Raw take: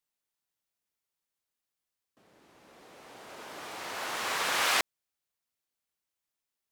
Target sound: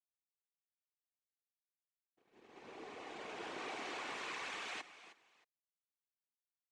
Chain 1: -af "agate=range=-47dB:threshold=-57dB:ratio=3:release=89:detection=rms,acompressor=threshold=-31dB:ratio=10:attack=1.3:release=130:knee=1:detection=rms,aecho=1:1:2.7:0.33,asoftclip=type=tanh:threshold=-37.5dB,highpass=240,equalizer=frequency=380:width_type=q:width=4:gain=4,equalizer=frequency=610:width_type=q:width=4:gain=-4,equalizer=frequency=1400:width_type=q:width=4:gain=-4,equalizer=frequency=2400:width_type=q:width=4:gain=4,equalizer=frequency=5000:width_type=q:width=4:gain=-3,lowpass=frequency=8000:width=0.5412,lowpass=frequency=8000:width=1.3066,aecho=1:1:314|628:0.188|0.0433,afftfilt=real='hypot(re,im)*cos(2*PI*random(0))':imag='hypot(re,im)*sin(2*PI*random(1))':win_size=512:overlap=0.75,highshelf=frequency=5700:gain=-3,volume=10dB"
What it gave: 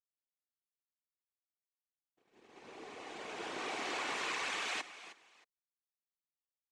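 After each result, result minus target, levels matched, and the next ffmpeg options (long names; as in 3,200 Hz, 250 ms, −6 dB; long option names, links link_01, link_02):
soft clipping: distortion −5 dB; 8,000 Hz band +2.0 dB
-af "agate=range=-47dB:threshold=-57dB:ratio=3:release=89:detection=rms,acompressor=threshold=-31dB:ratio=10:attack=1.3:release=130:knee=1:detection=rms,aecho=1:1:2.7:0.33,asoftclip=type=tanh:threshold=-45dB,highpass=240,equalizer=frequency=380:width_type=q:width=4:gain=4,equalizer=frequency=610:width_type=q:width=4:gain=-4,equalizer=frequency=1400:width_type=q:width=4:gain=-4,equalizer=frequency=2400:width_type=q:width=4:gain=4,equalizer=frequency=5000:width_type=q:width=4:gain=-3,lowpass=frequency=8000:width=0.5412,lowpass=frequency=8000:width=1.3066,aecho=1:1:314|628:0.188|0.0433,afftfilt=real='hypot(re,im)*cos(2*PI*random(0))':imag='hypot(re,im)*sin(2*PI*random(1))':win_size=512:overlap=0.75,highshelf=frequency=5700:gain=-3,volume=10dB"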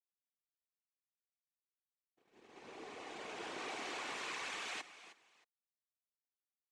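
8,000 Hz band +3.0 dB
-af "agate=range=-47dB:threshold=-57dB:ratio=3:release=89:detection=rms,acompressor=threshold=-31dB:ratio=10:attack=1.3:release=130:knee=1:detection=rms,aecho=1:1:2.7:0.33,asoftclip=type=tanh:threshold=-45dB,highpass=240,equalizer=frequency=380:width_type=q:width=4:gain=4,equalizer=frequency=610:width_type=q:width=4:gain=-4,equalizer=frequency=1400:width_type=q:width=4:gain=-4,equalizer=frequency=2400:width_type=q:width=4:gain=4,equalizer=frequency=5000:width_type=q:width=4:gain=-3,lowpass=frequency=8000:width=0.5412,lowpass=frequency=8000:width=1.3066,aecho=1:1:314|628:0.188|0.0433,afftfilt=real='hypot(re,im)*cos(2*PI*random(0))':imag='hypot(re,im)*sin(2*PI*random(1))':win_size=512:overlap=0.75,highshelf=frequency=5700:gain=-10.5,volume=10dB"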